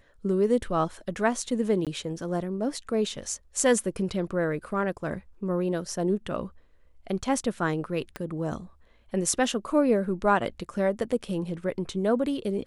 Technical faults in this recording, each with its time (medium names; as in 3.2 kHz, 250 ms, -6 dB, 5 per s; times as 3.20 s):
1.85–1.87 s: dropout 17 ms
8.16 s: pop -20 dBFS